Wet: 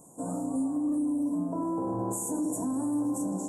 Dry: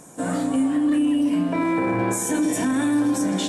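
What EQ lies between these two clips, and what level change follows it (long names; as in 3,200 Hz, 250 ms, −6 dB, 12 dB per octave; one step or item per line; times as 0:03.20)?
Chebyshev band-stop filter 1,000–7,300 Hz, order 3
high-shelf EQ 11,000 Hz +5.5 dB
−8.0 dB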